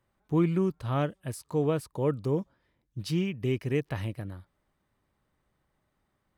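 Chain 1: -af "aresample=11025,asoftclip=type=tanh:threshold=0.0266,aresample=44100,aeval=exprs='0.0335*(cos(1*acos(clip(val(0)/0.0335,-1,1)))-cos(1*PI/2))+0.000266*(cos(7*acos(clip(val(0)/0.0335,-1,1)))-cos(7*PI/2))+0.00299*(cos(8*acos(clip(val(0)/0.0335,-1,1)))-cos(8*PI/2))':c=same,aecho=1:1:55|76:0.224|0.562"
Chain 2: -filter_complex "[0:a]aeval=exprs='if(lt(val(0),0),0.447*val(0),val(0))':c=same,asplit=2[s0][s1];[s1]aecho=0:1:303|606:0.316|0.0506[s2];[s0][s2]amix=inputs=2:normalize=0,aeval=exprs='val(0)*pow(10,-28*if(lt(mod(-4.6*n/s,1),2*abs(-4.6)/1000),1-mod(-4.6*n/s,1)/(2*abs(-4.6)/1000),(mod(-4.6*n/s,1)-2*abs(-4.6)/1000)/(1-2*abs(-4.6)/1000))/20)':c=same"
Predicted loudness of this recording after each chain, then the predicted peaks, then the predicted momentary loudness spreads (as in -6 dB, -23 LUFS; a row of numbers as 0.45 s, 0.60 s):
-36.5 LUFS, -40.0 LUFS; -25.0 dBFS, -17.5 dBFS; 8 LU, 15 LU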